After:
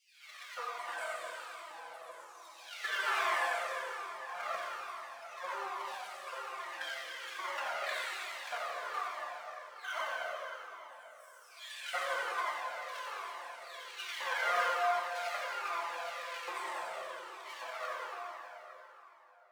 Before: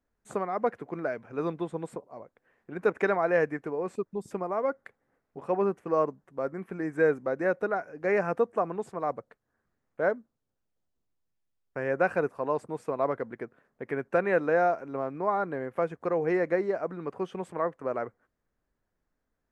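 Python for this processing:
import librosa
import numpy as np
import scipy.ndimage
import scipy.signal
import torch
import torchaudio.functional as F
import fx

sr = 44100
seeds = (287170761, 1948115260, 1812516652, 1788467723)

p1 = fx.spec_delay(x, sr, highs='early', ms=896)
p2 = fx.low_shelf(p1, sr, hz=320.0, db=-8.5)
p3 = fx.hum_notches(p2, sr, base_hz=60, count=8)
p4 = p3 + fx.echo_feedback(p3, sr, ms=89, feedback_pct=46, wet_db=-4.0, dry=0)
p5 = np.maximum(p4, 0.0)
p6 = fx.filter_lfo_highpass(p5, sr, shape='square', hz=0.88, low_hz=850.0, high_hz=2900.0, q=1.0)
p7 = fx.tilt_eq(p6, sr, slope=2.0)
p8 = fx.rev_plate(p7, sr, seeds[0], rt60_s=3.9, hf_ratio=0.75, predelay_ms=0, drr_db=-4.5)
p9 = fx.comb_cascade(p8, sr, direction='falling', hz=1.2)
y = p9 * librosa.db_to_amplitude(1.5)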